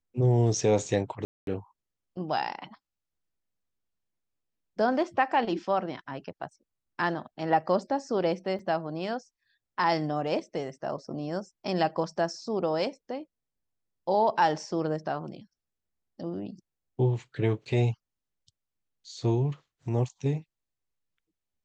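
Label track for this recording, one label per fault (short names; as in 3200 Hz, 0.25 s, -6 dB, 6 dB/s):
1.250000	1.470000	gap 0.222 s
8.590000	8.590000	gap 3.6 ms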